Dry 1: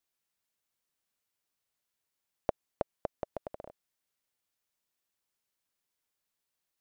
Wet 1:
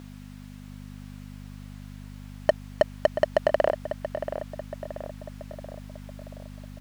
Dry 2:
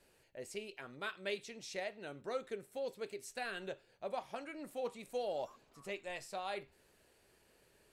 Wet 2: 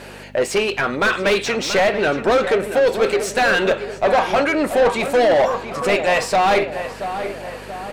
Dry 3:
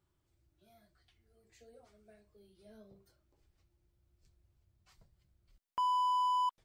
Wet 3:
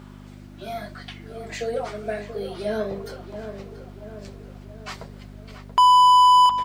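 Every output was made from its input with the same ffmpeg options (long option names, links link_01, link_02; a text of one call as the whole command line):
ffmpeg -i in.wav -filter_complex "[0:a]acontrast=75,aeval=exprs='val(0)+0.00178*(sin(2*PI*50*n/s)+sin(2*PI*2*50*n/s)/2+sin(2*PI*3*50*n/s)/3+sin(2*PI*4*50*n/s)/4+sin(2*PI*5*50*n/s)/5)':channel_layout=same,asplit=2[link_01][link_02];[link_02]highpass=frequency=720:poles=1,volume=37dB,asoftclip=type=tanh:threshold=-6dB[link_03];[link_01][link_03]amix=inputs=2:normalize=0,lowpass=frequency=1800:poles=1,volume=-6dB,asplit=2[link_04][link_05];[link_05]adelay=681,lowpass=frequency=2200:poles=1,volume=-9.5dB,asplit=2[link_06][link_07];[link_07]adelay=681,lowpass=frequency=2200:poles=1,volume=0.55,asplit=2[link_08][link_09];[link_09]adelay=681,lowpass=frequency=2200:poles=1,volume=0.55,asplit=2[link_10][link_11];[link_11]adelay=681,lowpass=frequency=2200:poles=1,volume=0.55,asplit=2[link_12][link_13];[link_13]adelay=681,lowpass=frequency=2200:poles=1,volume=0.55,asplit=2[link_14][link_15];[link_15]adelay=681,lowpass=frequency=2200:poles=1,volume=0.55[link_16];[link_06][link_08][link_10][link_12][link_14][link_16]amix=inputs=6:normalize=0[link_17];[link_04][link_17]amix=inputs=2:normalize=0" out.wav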